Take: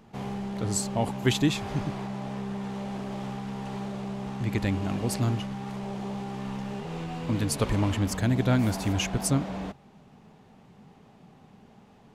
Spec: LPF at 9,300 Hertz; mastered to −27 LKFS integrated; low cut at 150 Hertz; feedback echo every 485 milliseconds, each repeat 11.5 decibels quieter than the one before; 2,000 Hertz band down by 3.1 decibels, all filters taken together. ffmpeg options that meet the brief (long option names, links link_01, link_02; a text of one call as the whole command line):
ffmpeg -i in.wav -af "highpass=150,lowpass=9300,equalizer=frequency=2000:width_type=o:gain=-4,aecho=1:1:485|970|1455:0.266|0.0718|0.0194,volume=4.5dB" out.wav